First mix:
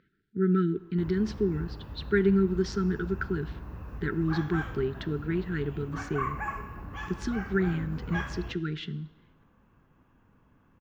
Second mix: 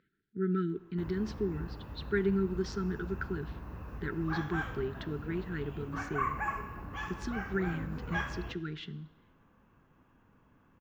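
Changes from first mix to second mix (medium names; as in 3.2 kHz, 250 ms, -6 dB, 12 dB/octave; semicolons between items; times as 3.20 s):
speech -5.0 dB; master: add bass shelf 170 Hz -4 dB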